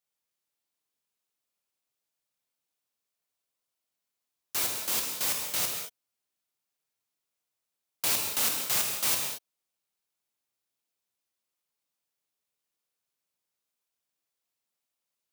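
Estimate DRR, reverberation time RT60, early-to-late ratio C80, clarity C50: 1.5 dB, not exponential, 5.0 dB, 3.5 dB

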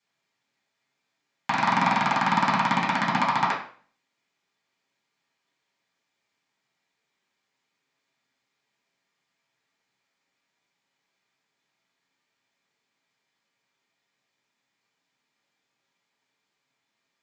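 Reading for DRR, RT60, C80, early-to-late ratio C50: -7.5 dB, 0.45 s, 10.5 dB, 6.5 dB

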